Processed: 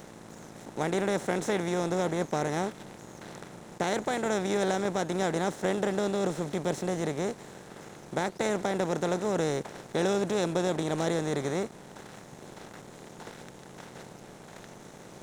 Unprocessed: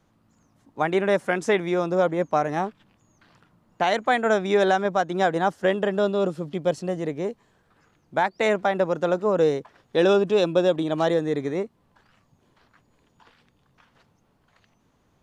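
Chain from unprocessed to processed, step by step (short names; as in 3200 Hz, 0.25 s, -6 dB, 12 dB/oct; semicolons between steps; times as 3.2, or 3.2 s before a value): per-bin compression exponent 0.4; EQ curve 110 Hz 0 dB, 460 Hz -13 dB, 2900 Hz -15 dB, 6400 Hz -1 dB; crossover distortion -48 dBFS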